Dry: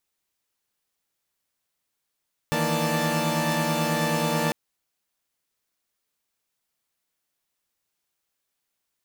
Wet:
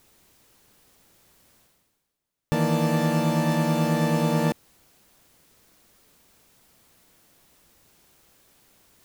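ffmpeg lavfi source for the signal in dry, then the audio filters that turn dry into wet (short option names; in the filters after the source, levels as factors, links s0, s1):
-f lavfi -i "aevalsrc='0.0473*((2*mod(155.56*t,1)-1)+(2*mod(164.81*t,1)-1)+(2*mod(233.08*t,1)-1)+(2*mod(587.33*t,1)-1)+(2*mod(880*t,1)-1))':d=2:s=44100"
-af "tiltshelf=f=650:g=5.5,areverse,acompressor=mode=upward:threshold=0.0112:ratio=2.5,areverse"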